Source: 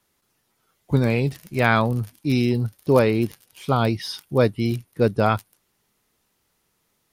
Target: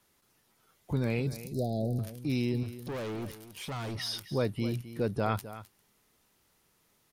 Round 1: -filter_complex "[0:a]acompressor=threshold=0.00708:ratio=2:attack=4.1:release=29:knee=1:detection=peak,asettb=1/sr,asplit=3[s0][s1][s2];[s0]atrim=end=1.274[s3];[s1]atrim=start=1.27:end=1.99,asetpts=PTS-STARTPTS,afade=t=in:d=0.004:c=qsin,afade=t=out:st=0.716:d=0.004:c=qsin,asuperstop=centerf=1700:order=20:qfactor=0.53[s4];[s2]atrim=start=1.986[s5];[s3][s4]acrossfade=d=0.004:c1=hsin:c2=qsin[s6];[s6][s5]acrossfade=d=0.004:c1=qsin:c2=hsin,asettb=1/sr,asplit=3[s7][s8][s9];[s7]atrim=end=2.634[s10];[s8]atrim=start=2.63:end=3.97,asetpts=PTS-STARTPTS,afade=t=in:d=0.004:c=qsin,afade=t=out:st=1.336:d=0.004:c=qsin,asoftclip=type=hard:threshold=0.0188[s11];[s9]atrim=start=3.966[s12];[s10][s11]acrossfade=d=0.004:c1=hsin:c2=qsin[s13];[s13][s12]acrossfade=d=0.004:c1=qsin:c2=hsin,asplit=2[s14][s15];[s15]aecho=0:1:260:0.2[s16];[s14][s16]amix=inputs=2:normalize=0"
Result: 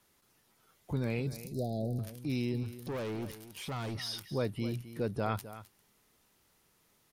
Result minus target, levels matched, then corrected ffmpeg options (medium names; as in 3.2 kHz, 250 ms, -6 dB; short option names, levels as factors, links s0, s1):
compression: peak gain reduction +3.5 dB
-filter_complex "[0:a]acompressor=threshold=0.015:ratio=2:attack=4.1:release=29:knee=1:detection=peak,asettb=1/sr,asplit=3[s0][s1][s2];[s0]atrim=end=1.274[s3];[s1]atrim=start=1.27:end=1.99,asetpts=PTS-STARTPTS,afade=t=in:d=0.004:c=qsin,afade=t=out:st=0.716:d=0.004:c=qsin,asuperstop=centerf=1700:order=20:qfactor=0.53[s4];[s2]atrim=start=1.986[s5];[s3][s4]acrossfade=d=0.004:c1=hsin:c2=qsin[s6];[s6][s5]acrossfade=d=0.004:c1=qsin:c2=hsin,asettb=1/sr,asplit=3[s7][s8][s9];[s7]atrim=end=2.634[s10];[s8]atrim=start=2.63:end=3.97,asetpts=PTS-STARTPTS,afade=t=in:d=0.004:c=qsin,afade=t=out:st=1.336:d=0.004:c=qsin,asoftclip=type=hard:threshold=0.0188[s11];[s9]atrim=start=3.966[s12];[s10][s11]acrossfade=d=0.004:c1=hsin:c2=qsin[s13];[s13][s12]acrossfade=d=0.004:c1=qsin:c2=hsin,asplit=2[s14][s15];[s15]aecho=0:1:260:0.2[s16];[s14][s16]amix=inputs=2:normalize=0"